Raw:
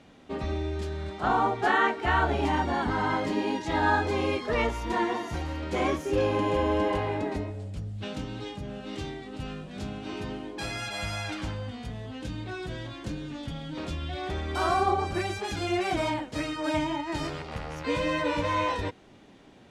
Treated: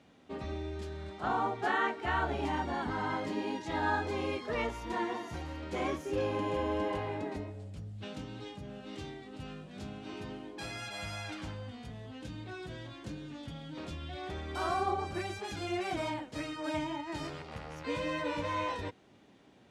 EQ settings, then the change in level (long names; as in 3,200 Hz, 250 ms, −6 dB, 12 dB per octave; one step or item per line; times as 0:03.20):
high-pass filter 64 Hz
−7.0 dB